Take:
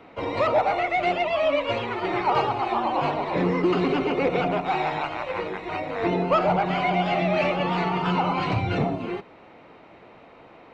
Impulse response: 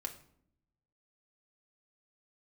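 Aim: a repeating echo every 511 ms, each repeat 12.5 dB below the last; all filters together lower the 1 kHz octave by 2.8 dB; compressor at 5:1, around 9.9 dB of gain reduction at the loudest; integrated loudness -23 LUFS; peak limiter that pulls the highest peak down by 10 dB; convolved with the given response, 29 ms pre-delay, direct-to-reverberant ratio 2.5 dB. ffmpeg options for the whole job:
-filter_complex "[0:a]equalizer=f=1000:t=o:g=-4,acompressor=threshold=0.0316:ratio=5,alimiter=level_in=2:limit=0.0631:level=0:latency=1,volume=0.501,aecho=1:1:511|1022|1533:0.237|0.0569|0.0137,asplit=2[s0][s1];[1:a]atrim=start_sample=2205,adelay=29[s2];[s1][s2]afir=irnorm=-1:irlink=0,volume=0.841[s3];[s0][s3]amix=inputs=2:normalize=0,volume=4.47"

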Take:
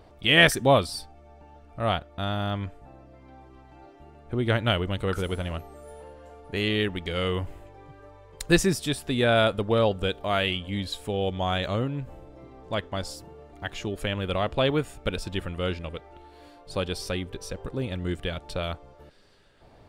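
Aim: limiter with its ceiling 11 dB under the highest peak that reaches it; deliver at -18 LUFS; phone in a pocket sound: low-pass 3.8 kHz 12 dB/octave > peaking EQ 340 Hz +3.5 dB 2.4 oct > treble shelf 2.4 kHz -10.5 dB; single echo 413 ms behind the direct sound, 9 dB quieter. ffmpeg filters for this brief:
-af "alimiter=limit=0.178:level=0:latency=1,lowpass=3800,equalizer=f=340:t=o:w=2.4:g=3.5,highshelf=f=2400:g=-10.5,aecho=1:1:413:0.355,volume=3.35"

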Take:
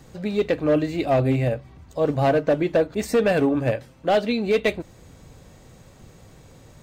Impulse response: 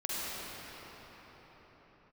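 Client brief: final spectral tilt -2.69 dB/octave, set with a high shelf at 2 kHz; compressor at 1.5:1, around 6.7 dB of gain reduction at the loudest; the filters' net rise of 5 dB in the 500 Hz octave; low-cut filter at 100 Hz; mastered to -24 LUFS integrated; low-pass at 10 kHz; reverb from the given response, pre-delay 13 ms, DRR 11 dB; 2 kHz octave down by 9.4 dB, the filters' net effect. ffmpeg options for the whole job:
-filter_complex "[0:a]highpass=100,lowpass=10000,equalizer=f=500:t=o:g=7,highshelf=f=2000:g=-7,equalizer=f=2000:t=o:g=-8.5,acompressor=threshold=0.0316:ratio=1.5,asplit=2[s0][s1];[1:a]atrim=start_sample=2205,adelay=13[s2];[s1][s2]afir=irnorm=-1:irlink=0,volume=0.126[s3];[s0][s3]amix=inputs=2:normalize=0,volume=1.06"

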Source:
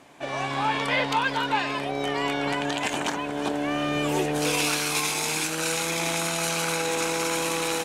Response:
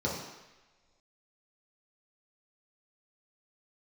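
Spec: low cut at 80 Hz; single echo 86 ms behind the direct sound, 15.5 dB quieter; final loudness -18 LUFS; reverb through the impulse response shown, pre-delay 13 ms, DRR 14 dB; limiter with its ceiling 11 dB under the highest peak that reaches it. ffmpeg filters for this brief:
-filter_complex "[0:a]highpass=80,alimiter=limit=0.075:level=0:latency=1,aecho=1:1:86:0.168,asplit=2[s0][s1];[1:a]atrim=start_sample=2205,adelay=13[s2];[s1][s2]afir=irnorm=-1:irlink=0,volume=0.0794[s3];[s0][s3]amix=inputs=2:normalize=0,volume=3.98"

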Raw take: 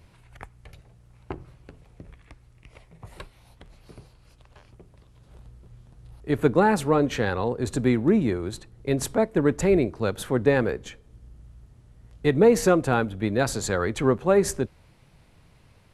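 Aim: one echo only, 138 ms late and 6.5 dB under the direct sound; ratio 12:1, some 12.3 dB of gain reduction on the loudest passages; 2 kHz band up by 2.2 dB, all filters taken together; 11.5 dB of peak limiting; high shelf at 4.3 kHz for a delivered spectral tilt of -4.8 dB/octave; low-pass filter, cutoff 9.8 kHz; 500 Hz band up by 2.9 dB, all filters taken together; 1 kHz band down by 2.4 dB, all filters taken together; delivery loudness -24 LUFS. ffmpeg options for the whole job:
-af "lowpass=9800,equalizer=f=500:t=o:g=4.5,equalizer=f=1000:t=o:g=-6.5,equalizer=f=2000:t=o:g=4.5,highshelf=f=4300:g=3.5,acompressor=threshold=0.0794:ratio=12,alimiter=limit=0.0631:level=0:latency=1,aecho=1:1:138:0.473,volume=2.99"

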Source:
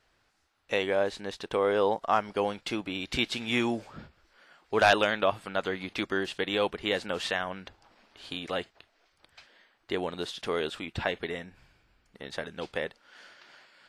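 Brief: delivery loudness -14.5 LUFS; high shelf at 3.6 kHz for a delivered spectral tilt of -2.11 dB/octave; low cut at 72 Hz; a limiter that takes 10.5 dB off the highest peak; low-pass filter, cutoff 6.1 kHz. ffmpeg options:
-af "highpass=72,lowpass=6100,highshelf=f=3600:g=3.5,volume=8.41,alimiter=limit=1:level=0:latency=1"

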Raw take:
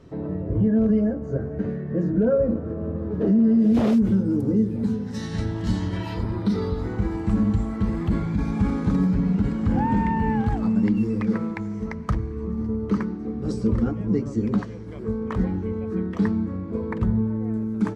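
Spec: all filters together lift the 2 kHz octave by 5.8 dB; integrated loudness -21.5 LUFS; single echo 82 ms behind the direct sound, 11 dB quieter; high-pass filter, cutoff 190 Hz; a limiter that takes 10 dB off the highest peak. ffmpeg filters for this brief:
-af "highpass=190,equalizer=f=2000:t=o:g=7,alimiter=limit=0.106:level=0:latency=1,aecho=1:1:82:0.282,volume=2.11"

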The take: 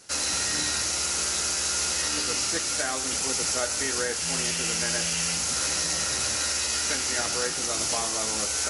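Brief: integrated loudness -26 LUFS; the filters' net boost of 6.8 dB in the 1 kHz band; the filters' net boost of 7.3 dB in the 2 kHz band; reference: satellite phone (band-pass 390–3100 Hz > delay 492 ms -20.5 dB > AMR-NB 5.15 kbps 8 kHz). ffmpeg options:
-af "highpass=390,lowpass=3100,equalizer=f=1000:t=o:g=6.5,equalizer=f=2000:t=o:g=8,aecho=1:1:492:0.0944,volume=1.78" -ar 8000 -c:a libopencore_amrnb -b:a 5150

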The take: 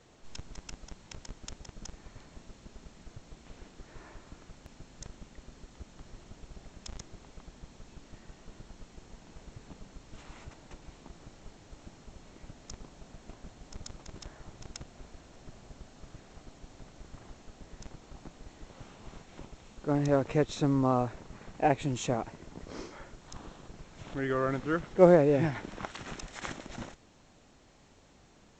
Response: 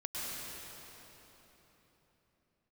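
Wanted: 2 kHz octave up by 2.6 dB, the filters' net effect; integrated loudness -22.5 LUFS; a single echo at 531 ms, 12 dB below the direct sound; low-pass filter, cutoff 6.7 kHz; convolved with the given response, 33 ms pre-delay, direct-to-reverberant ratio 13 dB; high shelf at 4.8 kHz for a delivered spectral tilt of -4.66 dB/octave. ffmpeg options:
-filter_complex "[0:a]lowpass=6700,equalizer=f=2000:t=o:g=4,highshelf=f=4800:g=-4,aecho=1:1:531:0.251,asplit=2[s0][s1];[1:a]atrim=start_sample=2205,adelay=33[s2];[s1][s2]afir=irnorm=-1:irlink=0,volume=0.15[s3];[s0][s3]amix=inputs=2:normalize=0,volume=2.11"

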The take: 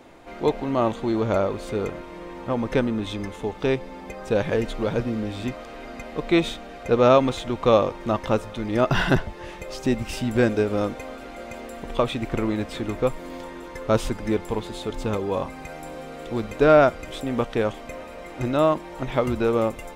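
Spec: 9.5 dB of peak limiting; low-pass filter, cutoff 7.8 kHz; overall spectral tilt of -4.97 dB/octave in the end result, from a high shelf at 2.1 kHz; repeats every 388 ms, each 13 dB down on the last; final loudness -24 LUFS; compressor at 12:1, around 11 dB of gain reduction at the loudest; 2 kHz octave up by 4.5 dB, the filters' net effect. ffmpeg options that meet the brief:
-af "lowpass=7800,equalizer=f=2000:t=o:g=9,highshelf=f=2100:g=-5,acompressor=threshold=0.0891:ratio=12,alimiter=limit=0.1:level=0:latency=1,aecho=1:1:388|776|1164:0.224|0.0493|0.0108,volume=2.24"

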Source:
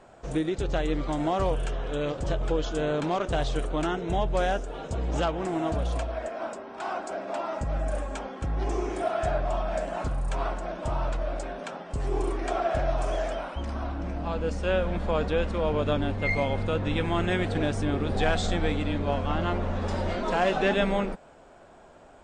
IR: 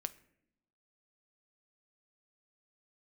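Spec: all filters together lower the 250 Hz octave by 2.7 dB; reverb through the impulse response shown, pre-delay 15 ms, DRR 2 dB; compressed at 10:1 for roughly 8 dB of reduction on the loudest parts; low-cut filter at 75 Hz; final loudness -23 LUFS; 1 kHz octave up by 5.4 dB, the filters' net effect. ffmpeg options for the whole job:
-filter_complex "[0:a]highpass=75,equalizer=f=250:t=o:g=-4.5,equalizer=f=1000:t=o:g=8,acompressor=threshold=0.0501:ratio=10,asplit=2[s0][s1];[1:a]atrim=start_sample=2205,adelay=15[s2];[s1][s2]afir=irnorm=-1:irlink=0,volume=0.944[s3];[s0][s3]amix=inputs=2:normalize=0,volume=2.11"

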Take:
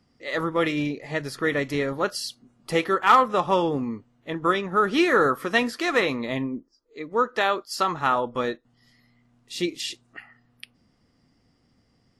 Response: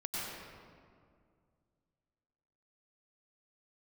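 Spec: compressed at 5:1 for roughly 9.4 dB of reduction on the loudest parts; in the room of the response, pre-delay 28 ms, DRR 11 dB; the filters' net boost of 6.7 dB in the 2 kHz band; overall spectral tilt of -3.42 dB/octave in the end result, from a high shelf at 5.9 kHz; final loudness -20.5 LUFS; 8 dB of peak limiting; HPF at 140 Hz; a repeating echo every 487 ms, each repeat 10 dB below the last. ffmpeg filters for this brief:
-filter_complex "[0:a]highpass=140,equalizer=f=2000:t=o:g=7.5,highshelf=f=5900:g=5.5,acompressor=threshold=0.112:ratio=5,alimiter=limit=0.168:level=0:latency=1,aecho=1:1:487|974|1461|1948:0.316|0.101|0.0324|0.0104,asplit=2[s0][s1];[1:a]atrim=start_sample=2205,adelay=28[s2];[s1][s2]afir=irnorm=-1:irlink=0,volume=0.188[s3];[s0][s3]amix=inputs=2:normalize=0,volume=2"

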